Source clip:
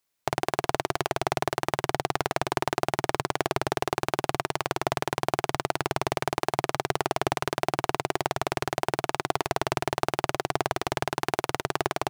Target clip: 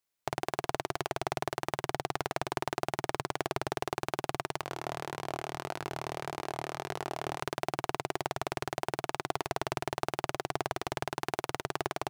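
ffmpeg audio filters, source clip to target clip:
ffmpeg -i in.wav -filter_complex "[0:a]asettb=1/sr,asplit=3[link_01][link_02][link_03];[link_01]atrim=end=4.614[link_04];[link_02]atrim=start=4.61:end=7.4,asetpts=PTS-STARTPTS,afade=type=in:duration=0.004:curve=qsin,afade=type=out:start_time=2.786:duration=0.004:curve=qsin,flanger=delay=19.5:depth=7:speed=1.7[link_05];[link_03]atrim=start=7.396[link_06];[link_04][link_05]acrossfade=duration=0.004:curve1=hsin:curve2=qsin[link_07];[link_07][link_06]acrossfade=duration=0.004:curve1=qsin:curve2=hsin,volume=-6.5dB" out.wav

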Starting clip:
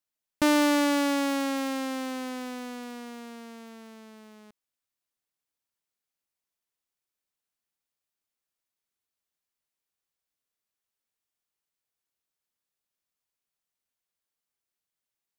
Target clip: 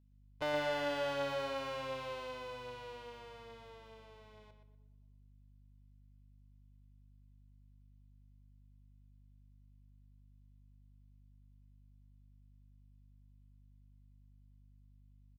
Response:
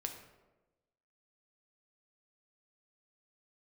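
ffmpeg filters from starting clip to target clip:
-filter_complex "[0:a]asplit=2[link_01][link_02];[link_02]asetrate=22050,aresample=44100,atempo=2,volume=-9dB[link_03];[link_01][link_03]amix=inputs=2:normalize=0,equalizer=frequency=1600:width_type=o:width=0.96:gain=-10.5,aecho=1:1:2:0.65,asoftclip=type=tanh:threshold=-25dB,acrossover=split=520 3700:gain=0.158 1 0.0891[link_04][link_05][link_06];[link_04][link_05][link_06]amix=inputs=3:normalize=0,aeval=exprs='val(0)+0.000708*(sin(2*PI*50*n/s)+sin(2*PI*2*50*n/s)/2+sin(2*PI*3*50*n/s)/3+sin(2*PI*4*50*n/s)/4+sin(2*PI*5*50*n/s)/5)':channel_layout=same,asplit=2[link_07][link_08];[link_08]adelay=121,lowpass=frequency=4600:poles=1,volume=-7dB,asplit=2[link_09][link_10];[link_10]adelay=121,lowpass=frequency=4600:poles=1,volume=0.28,asplit=2[link_11][link_12];[link_12]adelay=121,lowpass=frequency=4600:poles=1,volume=0.28[link_13];[link_07][link_09][link_11][link_13]amix=inputs=4:normalize=0,asplit=2[link_14][link_15];[1:a]atrim=start_sample=2205,asetrate=25137,aresample=44100,highshelf=frequency=12000:gain=11[link_16];[link_15][link_16]afir=irnorm=-1:irlink=0,volume=-12dB[link_17];[link_14][link_17]amix=inputs=2:normalize=0,volume=-4dB"

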